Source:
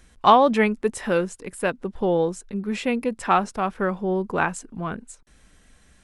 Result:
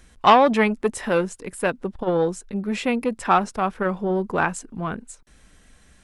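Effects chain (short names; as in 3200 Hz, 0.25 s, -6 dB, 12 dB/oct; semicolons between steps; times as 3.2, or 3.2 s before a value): core saturation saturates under 1000 Hz; gain +2 dB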